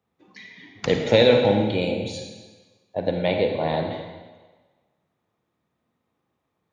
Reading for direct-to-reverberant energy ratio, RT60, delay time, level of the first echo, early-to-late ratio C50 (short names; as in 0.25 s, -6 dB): 3.0 dB, 1.3 s, none, none, 4.0 dB